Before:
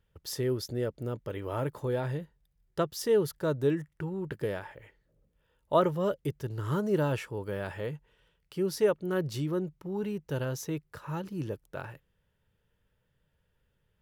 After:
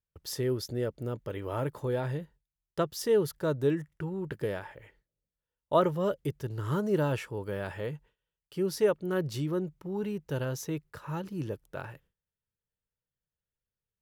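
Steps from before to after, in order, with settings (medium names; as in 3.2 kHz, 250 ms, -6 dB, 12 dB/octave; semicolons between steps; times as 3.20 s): gate with hold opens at -54 dBFS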